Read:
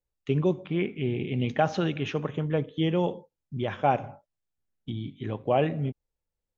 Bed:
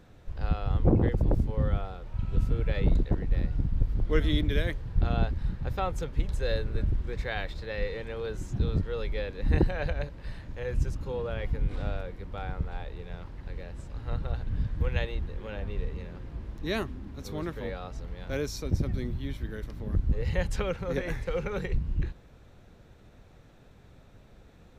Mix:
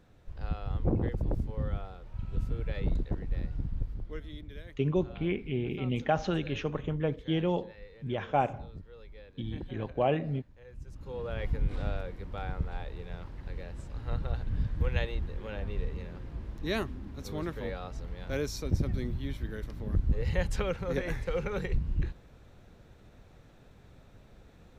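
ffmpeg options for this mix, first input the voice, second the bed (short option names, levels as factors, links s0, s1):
-filter_complex "[0:a]adelay=4500,volume=0.668[s0];[1:a]volume=3.55,afade=t=out:st=3.72:d=0.5:silence=0.251189,afade=t=in:st=10.85:d=0.58:silence=0.141254[s1];[s0][s1]amix=inputs=2:normalize=0"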